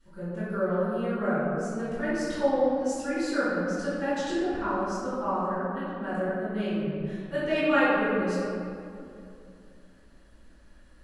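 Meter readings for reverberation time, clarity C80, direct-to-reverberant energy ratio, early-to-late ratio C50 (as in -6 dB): 2.6 s, -1.5 dB, -18.0 dB, -3.5 dB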